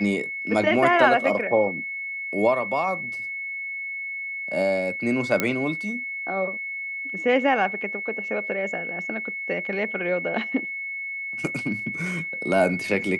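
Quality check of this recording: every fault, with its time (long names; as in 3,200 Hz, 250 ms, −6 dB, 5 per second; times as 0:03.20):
whistle 2,200 Hz −29 dBFS
0:05.40: click −7 dBFS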